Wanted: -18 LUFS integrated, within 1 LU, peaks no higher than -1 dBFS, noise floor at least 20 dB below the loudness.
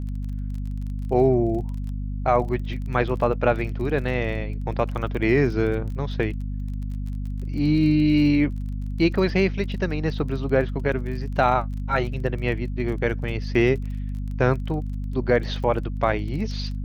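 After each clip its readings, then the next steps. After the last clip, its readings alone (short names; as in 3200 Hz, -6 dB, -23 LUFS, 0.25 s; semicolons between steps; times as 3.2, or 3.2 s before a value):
ticks 26/s; hum 50 Hz; harmonics up to 250 Hz; hum level -26 dBFS; loudness -24.0 LUFS; peak -5.5 dBFS; loudness target -18.0 LUFS
-> de-click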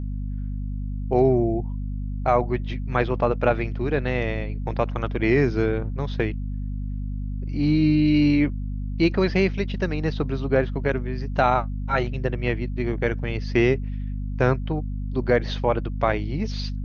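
ticks 0/s; hum 50 Hz; harmonics up to 250 Hz; hum level -26 dBFS
-> notches 50/100/150/200/250 Hz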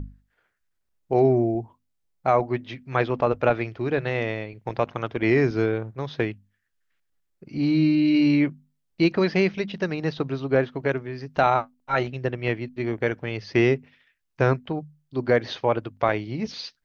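hum none; loudness -24.5 LUFS; peak -6.5 dBFS; loudness target -18.0 LUFS
-> gain +6.5 dB; limiter -1 dBFS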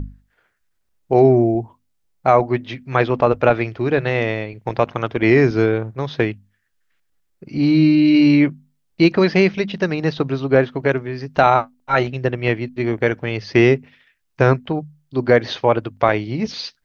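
loudness -18.0 LUFS; peak -1.0 dBFS; noise floor -68 dBFS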